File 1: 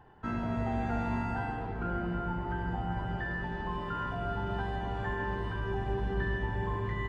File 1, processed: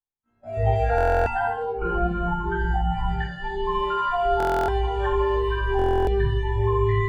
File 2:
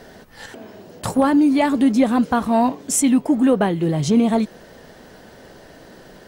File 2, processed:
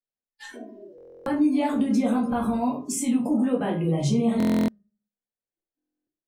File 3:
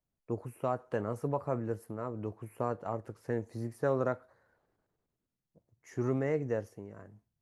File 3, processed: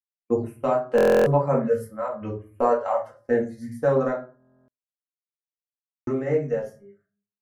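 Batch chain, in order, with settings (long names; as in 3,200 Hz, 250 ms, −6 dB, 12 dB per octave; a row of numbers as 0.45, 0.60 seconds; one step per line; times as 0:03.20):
noise reduction from a noise print of the clip's start 26 dB
downward expander −45 dBFS
hum removal 205.6 Hz, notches 9
speech leveller 2 s
brickwall limiter −17.5 dBFS
rectangular room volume 170 cubic metres, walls furnished, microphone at 2.1 metres
buffer that repeats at 0:00.96/0:04.38/0:05.77, samples 1,024, times 12
loudness normalisation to −24 LKFS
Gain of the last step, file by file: +8.0, −5.5, +4.5 decibels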